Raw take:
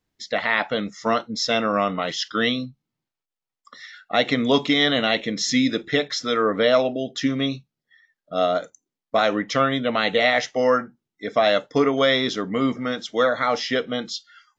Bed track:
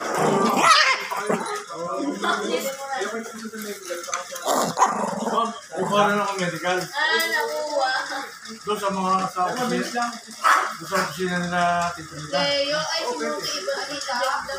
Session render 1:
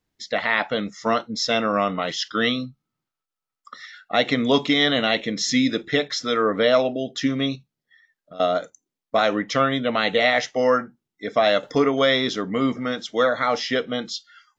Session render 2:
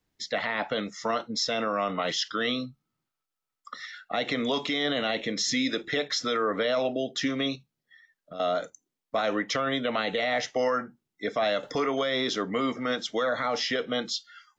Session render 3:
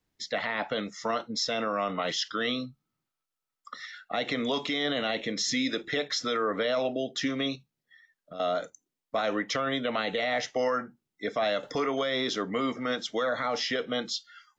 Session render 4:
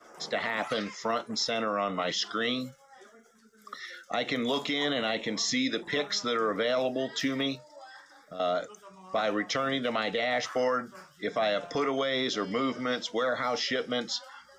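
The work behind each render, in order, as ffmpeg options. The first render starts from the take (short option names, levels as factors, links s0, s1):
-filter_complex "[0:a]asettb=1/sr,asplit=3[s0][s1][s2];[s0]atrim=end=2.444[s3];[s1]atrim=start=2.44:end=3.85,asetpts=PTS-STARTPTS,afade=t=in:d=0.004:c=qsin,afade=t=out:st=1.406:d=0.004:c=qsin,equalizer=f=1300:t=o:w=0.23:g=12[s4];[s2]atrim=start=3.846[s5];[s3][s4]acrossfade=d=0.004:c1=hsin:c2=qsin[s6];[s6][s5]acrossfade=d=0.004:c1=qsin:c2=hsin,asettb=1/sr,asplit=3[s7][s8][s9];[s7]atrim=end=7.554[s10];[s8]atrim=start=7.55:end=8.4,asetpts=PTS-STARTPTS,afade=t=in:d=0.004:c=qsin,afade=t=out:st=0.846:d=0.004:c=qsin,acompressor=threshold=0.0112:ratio=4:attack=3.2:release=140:knee=1:detection=peak[s11];[s9]atrim=start=8.396[s12];[s10][s11]acrossfade=d=0.004:c1=hsin:c2=qsin[s13];[s13][s12]acrossfade=d=0.004:c1=qsin:c2=hsin,asettb=1/sr,asplit=3[s14][s15][s16];[s14]atrim=end=11.634[s17];[s15]atrim=start=11.63:end=12.83,asetpts=PTS-STARTPTS,afade=t=in:d=0.004:c=qsin,afade=t=out:st=1.196:d=0.004:c=qsin,acompressor=mode=upward:threshold=0.0447:ratio=2.5:attack=3.2:release=140:knee=2.83:detection=peak[s18];[s16]atrim=start=12.826[s19];[s17][s18]acrossfade=d=0.004:c1=hsin:c2=qsin[s20];[s20][s19]acrossfade=d=0.004:c1=qsin:c2=hsin"
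-filter_complex "[0:a]acrossover=split=310|730[s0][s1][s2];[s0]acompressor=threshold=0.0141:ratio=4[s3];[s1]acompressor=threshold=0.0501:ratio=4[s4];[s2]acompressor=threshold=0.0631:ratio=4[s5];[s3][s4][s5]amix=inputs=3:normalize=0,alimiter=limit=0.126:level=0:latency=1:release=22"
-af "volume=0.841"
-filter_complex "[1:a]volume=0.0473[s0];[0:a][s0]amix=inputs=2:normalize=0"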